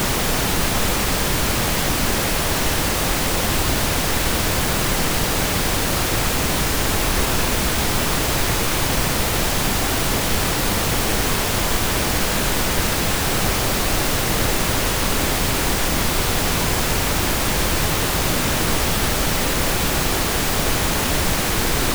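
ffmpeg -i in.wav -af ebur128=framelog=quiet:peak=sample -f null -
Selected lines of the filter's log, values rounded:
Integrated loudness:
  I:         -19.1 LUFS
  Threshold: -29.1 LUFS
Loudness range:
  LRA:         0.1 LU
  Threshold: -39.1 LUFS
  LRA low:   -19.2 LUFS
  LRA high:  -19.1 LUFS
Sample peak:
  Peak:       -6.2 dBFS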